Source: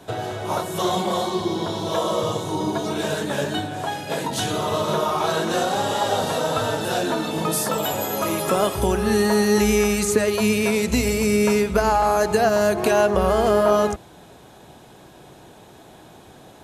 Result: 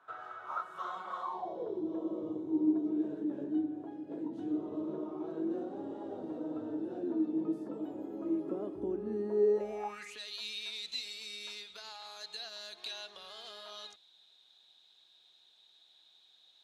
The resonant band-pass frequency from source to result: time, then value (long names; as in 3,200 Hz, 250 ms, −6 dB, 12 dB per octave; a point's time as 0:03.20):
resonant band-pass, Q 10
0:01.18 1,300 Hz
0:01.85 310 Hz
0:09.27 310 Hz
0:09.86 820 Hz
0:10.20 3,800 Hz